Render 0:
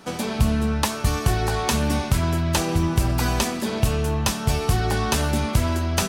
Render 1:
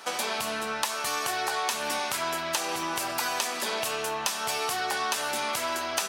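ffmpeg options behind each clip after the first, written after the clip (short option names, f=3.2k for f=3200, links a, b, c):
-filter_complex "[0:a]asplit=2[a][b];[b]alimiter=limit=-18dB:level=0:latency=1,volume=-2.5dB[c];[a][c]amix=inputs=2:normalize=0,highpass=720,acompressor=threshold=-26dB:ratio=4"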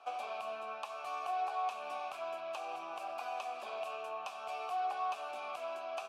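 -filter_complex "[0:a]lowshelf=f=370:g=2.5,acrossover=split=180|6700[a][b][c];[c]crystalizer=i=0.5:c=0[d];[a][b][d]amix=inputs=3:normalize=0,asplit=3[e][f][g];[e]bandpass=f=730:t=q:w=8,volume=0dB[h];[f]bandpass=f=1.09k:t=q:w=8,volume=-6dB[i];[g]bandpass=f=2.44k:t=q:w=8,volume=-9dB[j];[h][i][j]amix=inputs=3:normalize=0,volume=-1.5dB"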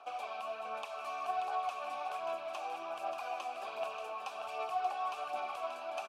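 -filter_complex "[0:a]aphaser=in_gain=1:out_gain=1:delay=3.9:decay=0.45:speed=1.3:type=sinusoidal,asplit=2[a][b];[b]aecho=0:1:583:0.447[c];[a][c]amix=inputs=2:normalize=0,volume=-1dB"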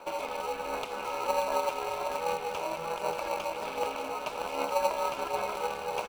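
-filter_complex "[0:a]aeval=exprs='val(0)*sin(2*PI*170*n/s)':c=same,asplit=2[a][b];[b]acrusher=samples=26:mix=1:aa=0.000001,volume=-5.5dB[c];[a][c]amix=inputs=2:normalize=0,volume=8dB"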